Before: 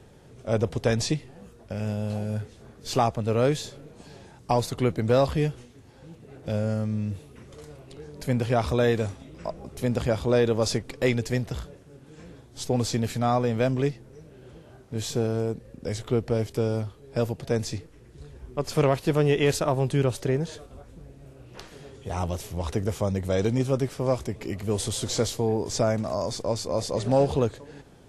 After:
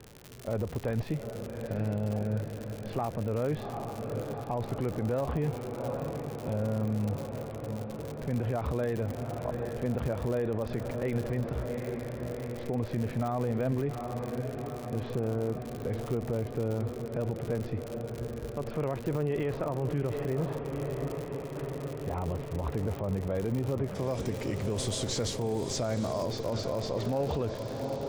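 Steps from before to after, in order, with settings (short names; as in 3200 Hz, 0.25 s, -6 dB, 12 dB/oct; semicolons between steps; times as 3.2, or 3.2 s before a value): diffused feedback echo 0.78 s, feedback 74%, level -12 dB; limiter -20.5 dBFS, peak gain reduction 11 dB; Bessel low-pass 1700 Hz, order 4, from 23.94 s 8100 Hz, from 26.24 s 3900 Hz; crackle 100/s -32 dBFS; gain -1 dB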